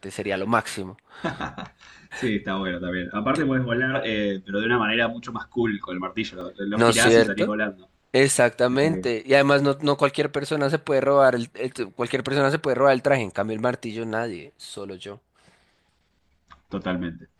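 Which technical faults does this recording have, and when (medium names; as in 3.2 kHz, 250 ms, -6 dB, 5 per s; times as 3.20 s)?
6.41 s: dropout 2.4 ms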